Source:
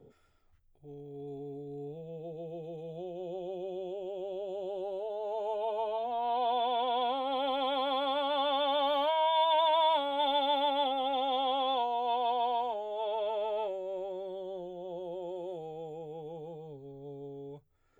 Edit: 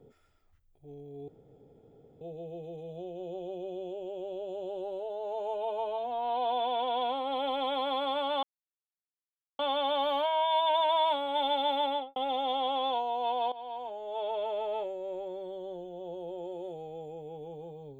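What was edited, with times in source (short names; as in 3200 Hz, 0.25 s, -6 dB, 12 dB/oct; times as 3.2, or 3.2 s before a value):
1.28–2.21 room tone
8.43 insert silence 1.16 s
10.73–11 studio fade out
12.36–13.04 fade in, from -16.5 dB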